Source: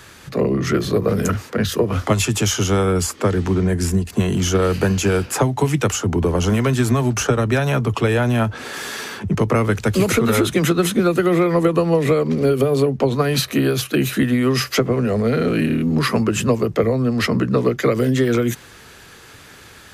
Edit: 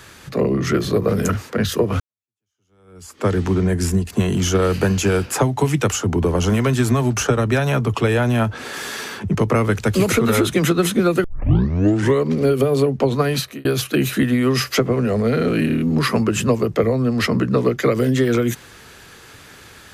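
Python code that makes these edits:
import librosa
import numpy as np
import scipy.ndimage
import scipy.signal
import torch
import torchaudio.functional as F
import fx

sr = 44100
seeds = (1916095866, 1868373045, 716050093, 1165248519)

y = fx.edit(x, sr, fx.fade_in_span(start_s=2.0, length_s=1.27, curve='exp'),
    fx.tape_start(start_s=11.24, length_s=1.01),
    fx.fade_out_span(start_s=13.27, length_s=0.38), tone=tone)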